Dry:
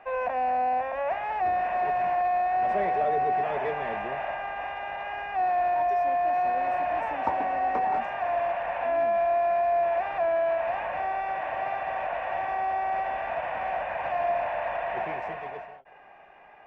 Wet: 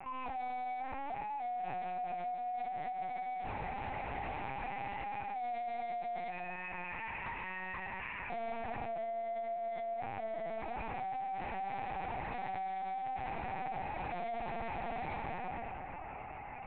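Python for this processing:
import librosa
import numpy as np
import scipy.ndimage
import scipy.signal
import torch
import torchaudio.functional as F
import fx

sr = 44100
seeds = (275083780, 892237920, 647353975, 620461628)

y = fx.highpass(x, sr, hz=1300.0, slope=24, at=(6.3, 8.31))
y = fx.rider(y, sr, range_db=5, speed_s=2.0)
y = fx.fixed_phaser(y, sr, hz=2300.0, stages=8)
y = 10.0 ** (-30.0 / 20.0) * np.tanh(y / 10.0 ** (-30.0 / 20.0))
y = fx.air_absorb(y, sr, metres=68.0)
y = fx.doubler(y, sr, ms=22.0, db=-13.5)
y = fx.echo_split(y, sr, split_hz=2200.0, low_ms=360, high_ms=128, feedback_pct=52, wet_db=-10.0)
y = fx.lpc_vocoder(y, sr, seeds[0], excitation='pitch_kept', order=8)
y = fx.env_flatten(y, sr, amount_pct=50)
y = y * librosa.db_to_amplitude(-7.5)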